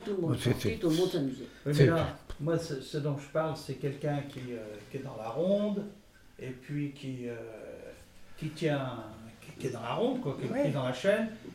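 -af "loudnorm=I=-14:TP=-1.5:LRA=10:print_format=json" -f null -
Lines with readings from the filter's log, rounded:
"input_i" : "-32.5",
"input_tp" : "-11.1",
"input_lra" : "6.5",
"input_thresh" : "-43.2",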